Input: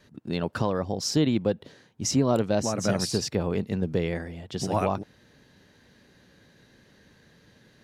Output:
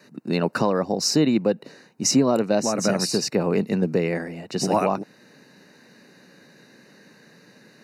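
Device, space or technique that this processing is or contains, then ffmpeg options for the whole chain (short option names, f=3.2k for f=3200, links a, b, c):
PA system with an anti-feedback notch: -af "highpass=f=160:w=0.5412,highpass=f=160:w=1.3066,asuperstop=centerf=3300:order=8:qfactor=4.7,alimiter=limit=-16dB:level=0:latency=1:release=436,volume=7dB"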